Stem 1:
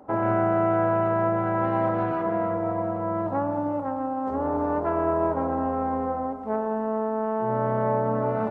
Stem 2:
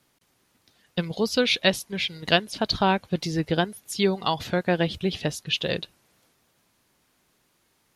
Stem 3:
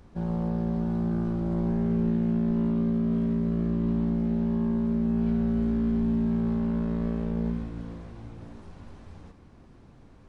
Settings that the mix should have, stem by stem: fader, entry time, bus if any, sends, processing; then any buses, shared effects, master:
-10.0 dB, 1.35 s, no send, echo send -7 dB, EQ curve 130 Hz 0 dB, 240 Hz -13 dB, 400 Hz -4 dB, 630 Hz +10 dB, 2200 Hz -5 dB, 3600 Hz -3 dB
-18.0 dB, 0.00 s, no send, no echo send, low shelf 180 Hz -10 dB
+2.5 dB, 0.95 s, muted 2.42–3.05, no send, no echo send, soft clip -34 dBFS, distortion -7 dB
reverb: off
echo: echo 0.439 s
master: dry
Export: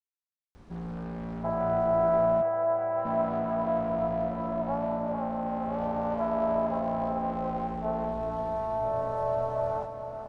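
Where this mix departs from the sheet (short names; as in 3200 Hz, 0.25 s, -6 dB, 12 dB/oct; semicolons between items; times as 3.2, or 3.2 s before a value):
stem 2: muted; stem 3: entry 0.95 s -> 0.55 s; master: extra low shelf 490 Hz -3 dB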